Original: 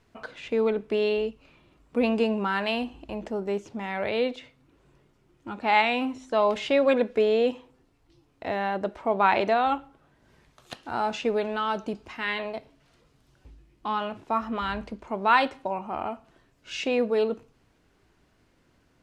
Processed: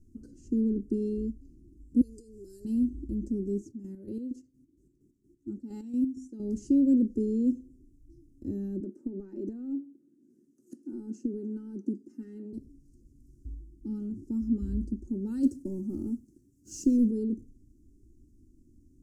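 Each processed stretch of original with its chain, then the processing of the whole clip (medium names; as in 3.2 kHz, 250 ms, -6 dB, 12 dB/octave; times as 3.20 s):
2.01–2.65 s: FFT filter 110 Hz 0 dB, 200 Hz -28 dB, 440 Hz -3 dB, 1 kHz -26 dB, 3 kHz -11 dB, 4.8 kHz +7 dB + compression 12:1, threshold -37 dBFS
3.61–6.40 s: high-pass 210 Hz 6 dB/octave + square tremolo 4.3 Hz, depth 60%, duty 45%
8.80–12.53 s: high-pass 220 Hz 24 dB/octave + resonant high shelf 2.8 kHz -7 dB, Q 1.5 + compression 4:1, threshold -25 dBFS
15.43–17.11 s: high-pass 88 Hz + treble shelf 4.7 kHz +7 dB + waveshaping leveller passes 1
whole clip: inverse Chebyshev band-stop 610–3800 Hz, stop band 40 dB; tilt EQ -1.5 dB/octave; comb 3.3 ms, depth 54%; trim +1.5 dB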